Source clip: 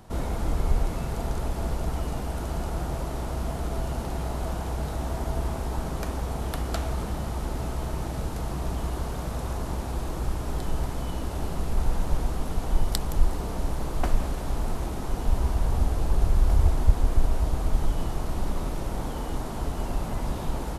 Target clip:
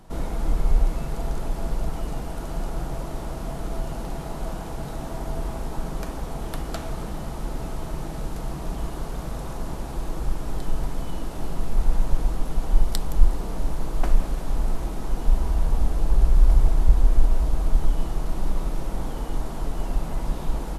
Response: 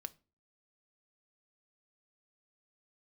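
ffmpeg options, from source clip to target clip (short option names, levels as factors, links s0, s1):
-filter_complex "[0:a]equalizer=f=92:t=o:w=0.64:g=-14,asplit=2[s0][s1];[1:a]atrim=start_sample=2205,asetrate=32193,aresample=44100,lowshelf=f=170:g=9.5[s2];[s1][s2]afir=irnorm=-1:irlink=0,volume=2.24[s3];[s0][s3]amix=inputs=2:normalize=0,volume=0.316"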